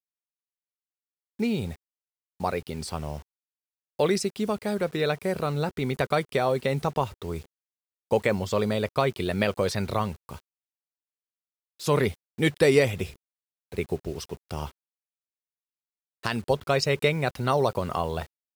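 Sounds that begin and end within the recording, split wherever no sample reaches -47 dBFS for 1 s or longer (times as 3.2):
1.39–10.4
11.8–14.71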